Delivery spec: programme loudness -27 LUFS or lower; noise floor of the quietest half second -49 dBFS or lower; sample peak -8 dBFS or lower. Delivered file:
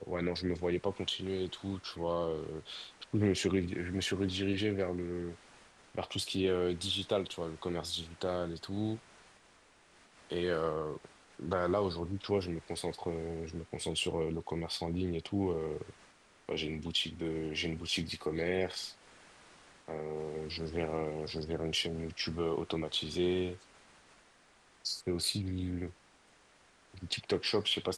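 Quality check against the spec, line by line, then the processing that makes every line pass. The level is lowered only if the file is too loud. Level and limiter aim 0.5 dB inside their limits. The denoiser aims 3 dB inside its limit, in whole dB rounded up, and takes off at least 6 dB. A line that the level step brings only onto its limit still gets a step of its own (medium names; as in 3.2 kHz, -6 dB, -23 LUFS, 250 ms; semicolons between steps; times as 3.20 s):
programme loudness -35.5 LUFS: pass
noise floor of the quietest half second -64 dBFS: pass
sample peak -17.0 dBFS: pass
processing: none needed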